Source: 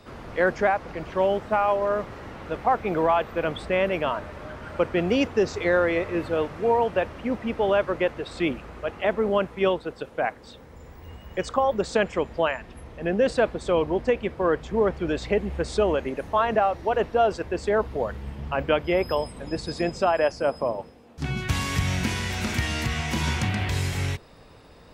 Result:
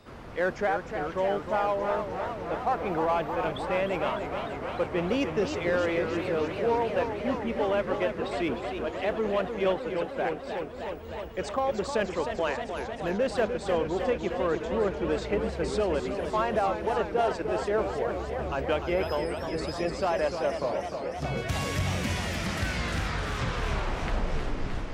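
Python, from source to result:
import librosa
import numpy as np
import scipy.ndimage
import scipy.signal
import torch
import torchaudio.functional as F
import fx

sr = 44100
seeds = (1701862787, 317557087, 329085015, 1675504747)

p1 = fx.tape_stop_end(x, sr, length_s=2.78)
p2 = np.clip(10.0 ** (24.5 / 20.0) * p1, -1.0, 1.0) / 10.0 ** (24.5 / 20.0)
p3 = p1 + (p2 * 10.0 ** (-6.0 / 20.0))
p4 = fx.echo_warbled(p3, sr, ms=305, feedback_pct=80, rate_hz=2.8, cents=163, wet_db=-7.5)
y = p4 * 10.0 ** (-7.5 / 20.0)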